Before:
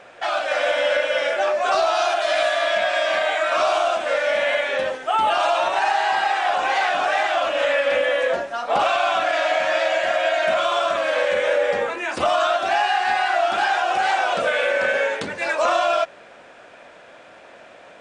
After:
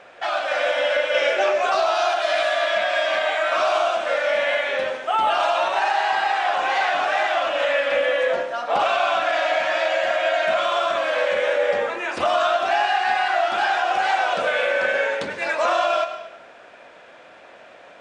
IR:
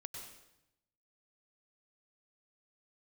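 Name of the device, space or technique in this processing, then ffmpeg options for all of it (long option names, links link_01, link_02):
filtered reverb send: -filter_complex "[0:a]asplit=2[link_01][link_02];[link_02]highpass=frequency=330:poles=1,lowpass=6800[link_03];[1:a]atrim=start_sample=2205[link_04];[link_03][link_04]afir=irnorm=-1:irlink=0,volume=2dB[link_05];[link_01][link_05]amix=inputs=2:normalize=0,asettb=1/sr,asplit=3[link_06][link_07][link_08];[link_06]atrim=end=1.144[link_09];[link_07]atrim=start=1.14:end=1.66,asetpts=PTS-STARTPTS,afade=type=in:duration=0.004:curve=qsin,afade=type=out:start_time=0.516:duration=0.004:curve=qsin,equalizer=frequency=400:width_type=o:width=0.67:gain=8,equalizer=frequency=2500:width_type=o:width=0.67:gain=5,equalizer=frequency=6300:width_type=o:width=0.67:gain=5[link_10];[link_08]atrim=start=1.656[link_11];[link_09][link_10]acrossfade=duration=0.004:curve1=hsin:curve2=qsin[link_12];[link_12][link_11]acrossfade=duration=0.004:curve1=qsin:curve2=hsin,volume=-5dB"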